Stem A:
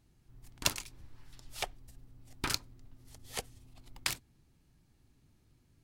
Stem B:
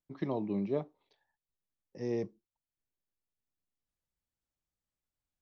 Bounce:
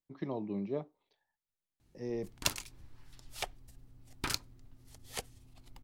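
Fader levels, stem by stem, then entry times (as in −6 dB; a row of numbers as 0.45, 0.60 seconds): −1.5, −3.5 decibels; 1.80, 0.00 seconds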